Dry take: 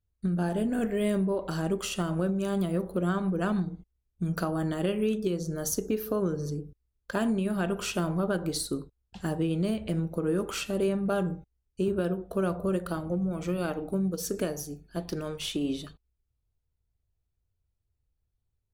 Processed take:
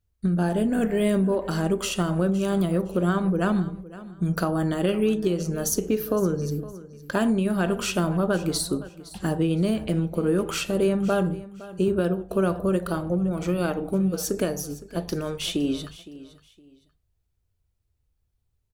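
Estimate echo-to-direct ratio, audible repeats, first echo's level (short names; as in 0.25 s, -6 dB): -17.0 dB, 2, -17.5 dB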